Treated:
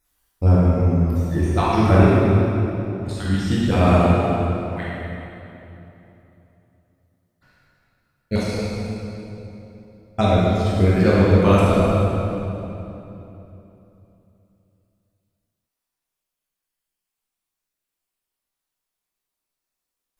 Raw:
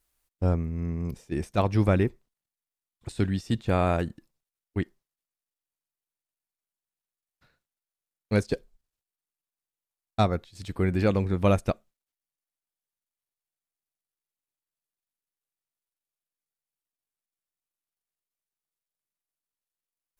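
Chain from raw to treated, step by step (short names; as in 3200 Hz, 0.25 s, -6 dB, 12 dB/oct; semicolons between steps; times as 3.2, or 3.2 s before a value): random spectral dropouts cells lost 30%; reverb RT60 3.2 s, pre-delay 14 ms, DRR -8 dB; gain +2.5 dB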